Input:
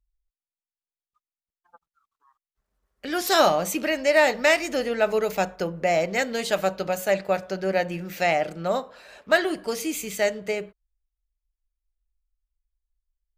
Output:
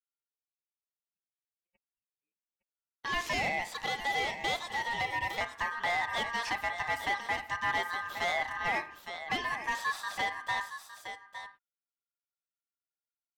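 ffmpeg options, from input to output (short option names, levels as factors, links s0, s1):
-filter_complex "[0:a]agate=range=0.0224:threshold=0.0158:ratio=3:detection=peak,alimiter=limit=0.15:level=0:latency=1:release=402,aecho=1:1:861:0.251,acrossover=split=4500[s0][s1];[s1]acompressor=threshold=0.00316:ratio=4:attack=1:release=60[s2];[s0][s2]amix=inputs=2:normalize=0,asoftclip=type=hard:threshold=0.0631,asettb=1/sr,asplit=3[s3][s4][s5];[s3]atrim=end=3.334[s6];[s4]atrim=start=3.33:end=5.41,asetpts=PTS-STARTPTS,afade=t=in:d=0.004:c=qsin,afade=t=out:st=2.076:d=0.004:c=qsin,highpass=f=420:w=0.5412,highpass=f=420:w=1.3066[s7];[s5]atrim=start=5.406[s8];[s6][s7]acrossfade=d=0.004:c1=hsin:c2=qsin[s9];[s9][s8]acrossfade=d=0.004:c1=qsin:c2=hsin,aeval=exprs='val(0)*sin(2*PI*1400*n/s)':c=same"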